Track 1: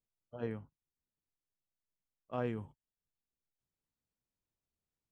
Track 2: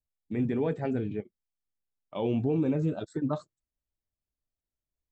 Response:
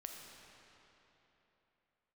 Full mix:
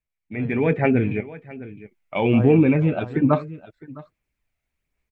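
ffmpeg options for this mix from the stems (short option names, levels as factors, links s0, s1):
-filter_complex "[0:a]volume=0.447,asplit=2[s0][s1];[s1]volume=0.398[s2];[1:a]lowpass=f=2300:t=q:w=4.8,volume=0.75,asplit=2[s3][s4];[s4]volume=0.126[s5];[s2][s5]amix=inputs=2:normalize=0,aecho=0:1:660:1[s6];[s0][s3][s6]amix=inputs=3:normalize=0,dynaudnorm=f=330:g=3:m=3.76,aphaser=in_gain=1:out_gain=1:delay=1.5:decay=0.28:speed=1.2:type=sinusoidal"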